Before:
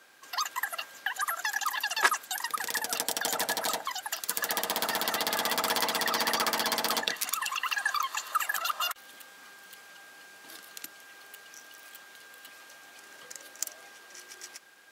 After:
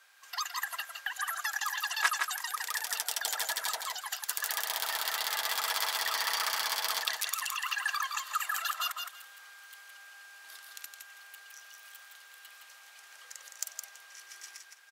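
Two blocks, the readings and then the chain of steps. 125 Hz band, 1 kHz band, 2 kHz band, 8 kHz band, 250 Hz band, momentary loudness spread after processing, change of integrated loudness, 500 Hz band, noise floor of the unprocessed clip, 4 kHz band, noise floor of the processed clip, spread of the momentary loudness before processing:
below −30 dB, −4.5 dB, −2.0 dB, −2.0 dB, below −20 dB, 20 LU, −2.5 dB, −11.0 dB, −53 dBFS, −2.0 dB, −55 dBFS, 21 LU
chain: high-pass filter 980 Hz 12 dB per octave
on a send: repeating echo 165 ms, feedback 17%, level −5 dB
on the sum: level −3 dB

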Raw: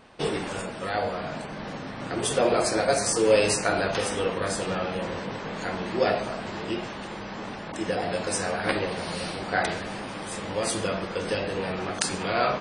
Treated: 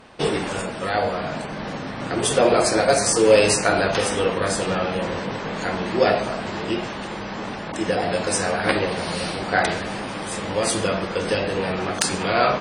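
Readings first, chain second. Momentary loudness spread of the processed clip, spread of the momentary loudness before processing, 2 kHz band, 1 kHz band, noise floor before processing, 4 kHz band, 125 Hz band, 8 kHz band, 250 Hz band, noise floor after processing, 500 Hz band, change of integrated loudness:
12 LU, 12 LU, +5.5 dB, +5.5 dB, −37 dBFS, +5.5 dB, +5.5 dB, +5.5 dB, +5.5 dB, −31 dBFS, +5.5 dB, +5.5 dB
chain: asymmetric clip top −11 dBFS
level +5.5 dB

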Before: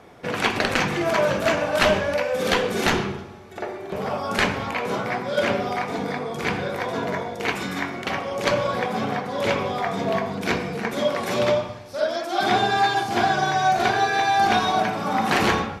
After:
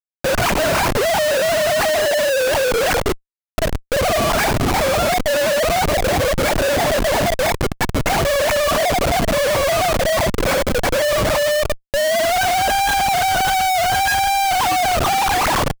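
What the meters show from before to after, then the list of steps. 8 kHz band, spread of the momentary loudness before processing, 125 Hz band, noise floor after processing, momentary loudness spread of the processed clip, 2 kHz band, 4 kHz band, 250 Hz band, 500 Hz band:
+13.5 dB, 8 LU, +6.5 dB, −65 dBFS, 4 LU, +4.5 dB, +6.5 dB, +1.5 dB, +7.0 dB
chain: three sine waves on the formant tracks
comparator with hysteresis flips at −33 dBFS
level +6.5 dB

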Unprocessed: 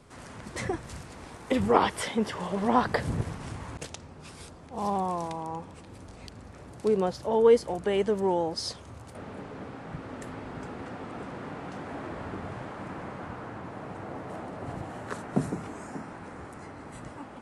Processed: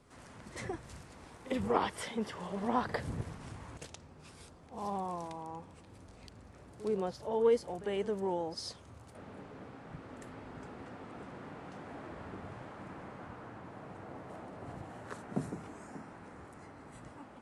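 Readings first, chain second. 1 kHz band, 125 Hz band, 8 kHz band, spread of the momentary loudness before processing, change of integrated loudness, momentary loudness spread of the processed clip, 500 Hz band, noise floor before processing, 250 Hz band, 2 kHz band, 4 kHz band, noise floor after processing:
−8.5 dB, −8.5 dB, −8.5 dB, 20 LU, −8.0 dB, 19 LU, −8.0 dB, −47 dBFS, −8.5 dB, −8.5 dB, −8.5 dB, −56 dBFS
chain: echo ahead of the sound 52 ms −15 dB
level −8.5 dB

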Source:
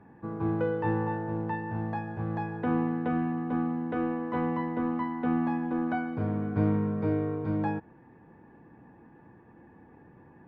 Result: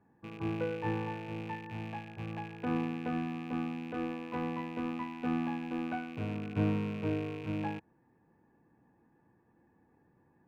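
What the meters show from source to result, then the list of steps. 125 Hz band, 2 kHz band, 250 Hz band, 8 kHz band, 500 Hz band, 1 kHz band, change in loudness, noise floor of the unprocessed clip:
−6.0 dB, −3.5 dB, −6.5 dB, can't be measured, −6.5 dB, −6.5 dB, −6.0 dB, −55 dBFS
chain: loose part that buzzes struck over −38 dBFS, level −30 dBFS
expander for the loud parts 1.5 to 1, over −43 dBFS
level −3.5 dB

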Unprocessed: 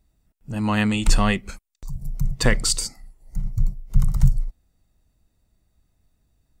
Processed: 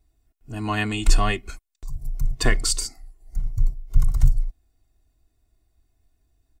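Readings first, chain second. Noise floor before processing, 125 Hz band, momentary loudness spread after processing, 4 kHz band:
−71 dBFS, −3.0 dB, 16 LU, −1.5 dB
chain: comb filter 2.8 ms, depth 75%
level −3.5 dB

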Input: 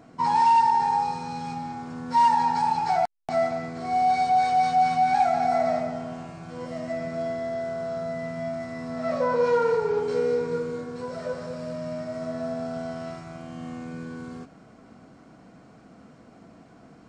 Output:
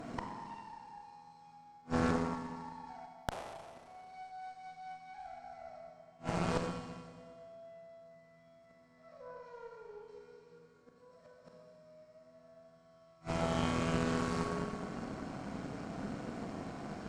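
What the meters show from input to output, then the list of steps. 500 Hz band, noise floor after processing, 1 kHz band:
−16.0 dB, −63 dBFS, −21.0 dB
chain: gate with flip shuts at −27 dBFS, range −34 dB
four-comb reverb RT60 1.9 s, combs from 30 ms, DRR 0 dB
harmonic generator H 6 −12 dB, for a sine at −21 dBFS
level +4.5 dB

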